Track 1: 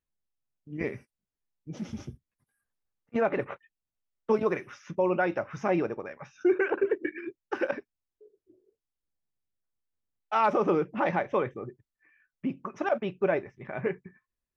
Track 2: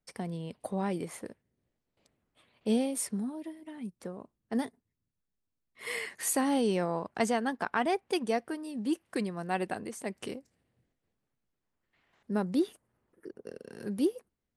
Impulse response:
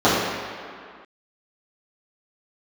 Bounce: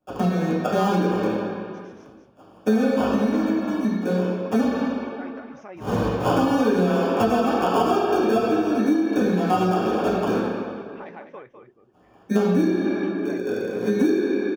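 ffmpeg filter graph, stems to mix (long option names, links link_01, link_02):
-filter_complex "[0:a]acompressor=threshold=-49dB:ratio=1.5,lowshelf=frequency=180:gain=-9.5,volume=-3.5dB,asplit=2[link_01][link_02];[link_02]volume=-8.5dB[link_03];[1:a]acrusher=samples=22:mix=1:aa=0.000001,volume=-2.5dB,asplit=2[link_04][link_05];[link_05]volume=-7dB[link_06];[2:a]atrim=start_sample=2205[link_07];[link_06][link_07]afir=irnorm=-1:irlink=0[link_08];[link_03]aecho=0:1:203:1[link_09];[link_01][link_04][link_08][link_09]amix=inputs=4:normalize=0,acompressor=threshold=-17dB:ratio=6"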